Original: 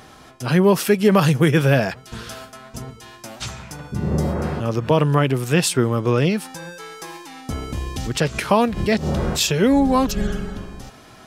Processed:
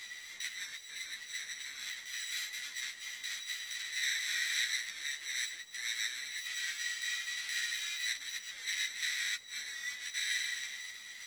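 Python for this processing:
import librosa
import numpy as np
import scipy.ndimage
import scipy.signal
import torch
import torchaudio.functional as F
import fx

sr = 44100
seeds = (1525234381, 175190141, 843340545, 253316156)

y = np.r_[np.sort(x[:len(x) // 16 * 16].reshape(-1, 16), axis=1).ravel(), x[len(x) // 16 * 16:]]
y = scipy.signal.sosfilt(scipy.signal.butter(8, 2300.0, 'highpass', fs=sr, output='sos'), y)
y = fx.high_shelf(y, sr, hz=3100.0, db=11.5)
y = fx.over_compress(y, sr, threshold_db=-29.0, ratio=-1.0)
y = fx.quant_dither(y, sr, seeds[0], bits=8, dither='none')
y = fx.formant_shift(y, sr, semitones=-6)
y = fx.air_absorb(y, sr, metres=83.0)
y = fx.doubler(y, sr, ms=18.0, db=-12.5)
y = fx.ensemble(y, sr)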